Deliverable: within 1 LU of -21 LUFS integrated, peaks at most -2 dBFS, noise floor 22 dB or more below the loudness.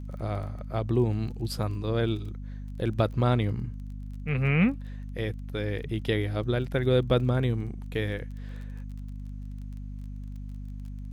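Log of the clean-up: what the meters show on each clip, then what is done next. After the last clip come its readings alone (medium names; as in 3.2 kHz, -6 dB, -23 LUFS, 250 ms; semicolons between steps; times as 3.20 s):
tick rate 22 per s; hum 50 Hz; highest harmonic 250 Hz; hum level -35 dBFS; loudness -28.5 LUFS; peak level -12.0 dBFS; loudness target -21.0 LUFS
-> de-click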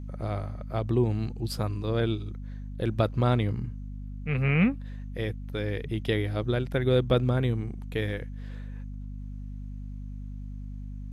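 tick rate 0.090 per s; hum 50 Hz; highest harmonic 250 Hz; hum level -35 dBFS
-> hum notches 50/100/150/200/250 Hz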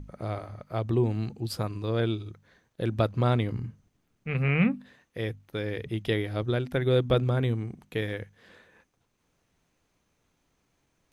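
hum not found; loudness -29.0 LUFS; peak level -11.5 dBFS; loudness target -21.0 LUFS
-> trim +8 dB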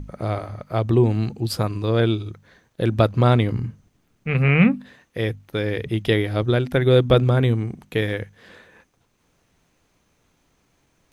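loudness -21.0 LUFS; peak level -3.5 dBFS; noise floor -67 dBFS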